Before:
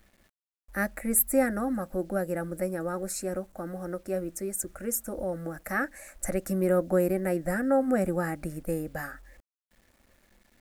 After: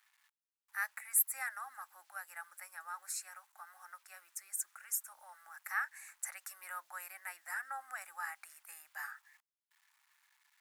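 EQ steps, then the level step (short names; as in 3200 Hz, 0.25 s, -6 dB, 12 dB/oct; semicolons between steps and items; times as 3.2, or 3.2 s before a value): elliptic high-pass 910 Hz, stop band 50 dB; -4.5 dB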